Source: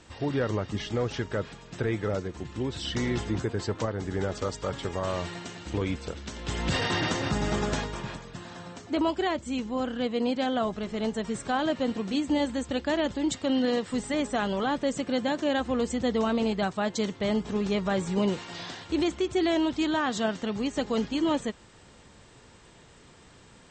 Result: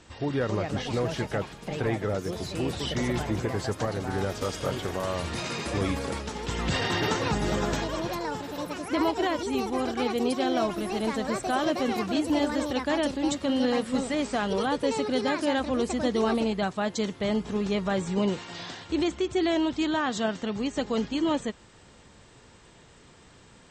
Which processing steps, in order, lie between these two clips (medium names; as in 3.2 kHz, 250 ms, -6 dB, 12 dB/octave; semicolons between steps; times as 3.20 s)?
ever faster or slower copies 331 ms, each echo +5 st, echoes 2, each echo -6 dB